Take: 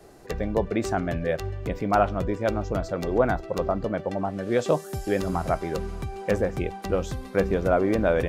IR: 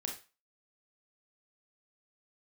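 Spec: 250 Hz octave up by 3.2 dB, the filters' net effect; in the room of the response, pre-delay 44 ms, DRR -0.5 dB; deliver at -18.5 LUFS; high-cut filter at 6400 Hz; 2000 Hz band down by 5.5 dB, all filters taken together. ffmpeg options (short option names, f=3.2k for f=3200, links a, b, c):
-filter_complex "[0:a]lowpass=6.4k,equalizer=f=250:t=o:g=4.5,equalizer=f=2k:t=o:g=-8,asplit=2[a][b];[1:a]atrim=start_sample=2205,adelay=44[c];[b][c]afir=irnorm=-1:irlink=0,volume=0.5dB[d];[a][d]amix=inputs=2:normalize=0,volume=4dB"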